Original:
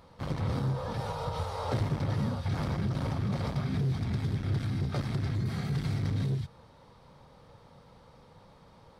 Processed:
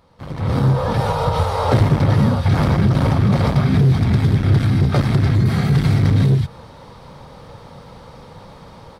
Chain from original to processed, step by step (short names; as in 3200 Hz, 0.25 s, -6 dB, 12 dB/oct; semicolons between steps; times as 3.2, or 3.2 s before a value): dynamic EQ 5900 Hz, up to -4 dB, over -59 dBFS, Q 0.82; AGC gain up to 16 dB